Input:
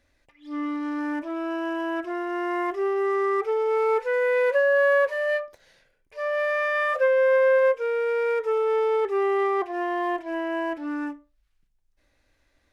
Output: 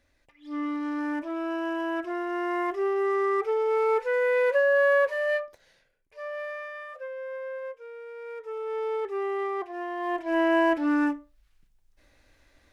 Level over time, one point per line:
0:05.42 −1.5 dB
0:06.49 −10.5 dB
0:06.88 −17 dB
0:08.14 −17 dB
0:08.88 −6.5 dB
0:09.97 −6.5 dB
0:10.41 +6 dB

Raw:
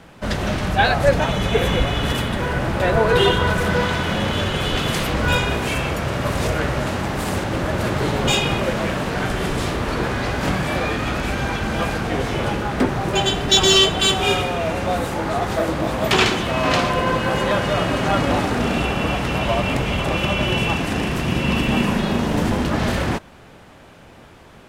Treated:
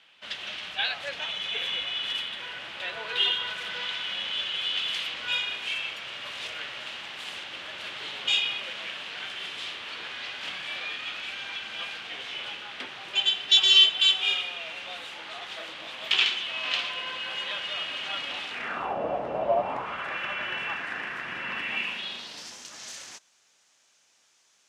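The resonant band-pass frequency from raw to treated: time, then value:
resonant band-pass, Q 2.9
0:18.50 3,100 Hz
0:18.99 620 Hz
0:19.53 620 Hz
0:20.08 1,700 Hz
0:21.54 1,700 Hz
0:22.59 6,300 Hz

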